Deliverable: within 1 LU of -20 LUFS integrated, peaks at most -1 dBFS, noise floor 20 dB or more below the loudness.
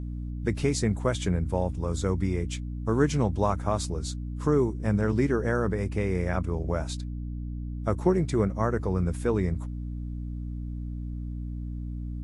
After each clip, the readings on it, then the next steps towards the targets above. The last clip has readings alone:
hum 60 Hz; highest harmonic 300 Hz; hum level -31 dBFS; loudness -28.5 LUFS; peak level -9.5 dBFS; loudness target -20.0 LUFS
-> hum notches 60/120/180/240/300 Hz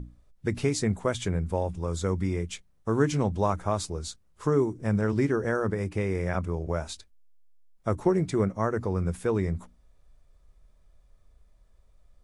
hum not found; loudness -28.5 LUFS; peak level -10.5 dBFS; loudness target -20.0 LUFS
-> trim +8.5 dB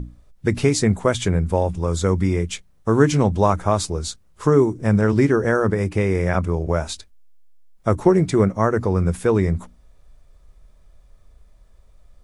loudness -20.0 LUFS; peak level -2.0 dBFS; noise floor -53 dBFS

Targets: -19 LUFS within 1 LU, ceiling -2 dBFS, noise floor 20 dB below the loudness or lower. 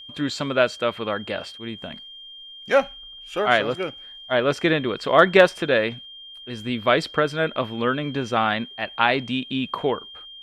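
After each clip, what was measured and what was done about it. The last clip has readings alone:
steady tone 3.2 kHz; tone level -39 dBFS; loudness -22.0 LUFS; peak level -1.5 dBFS; loudness target -19.0 LUFS
-> band-stop 3.2 kHz, Q 30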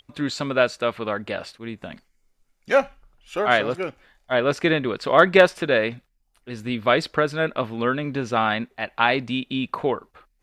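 steady tone not found; loudness -22.5 LUFS; peak level -1.5 dBFS; loudness target -19.0 LUFS
-> trim +3.5 dB; peak limiter -2 dBFS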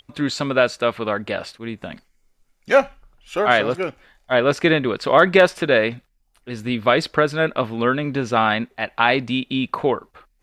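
loudness -19.5 LUFS; peak level -2.0 dBFS; noise floor -65 dBFS

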